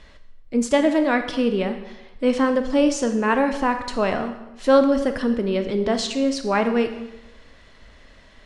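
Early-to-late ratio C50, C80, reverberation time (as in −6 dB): 9.5 dB, 11.5 dB, 1.0 s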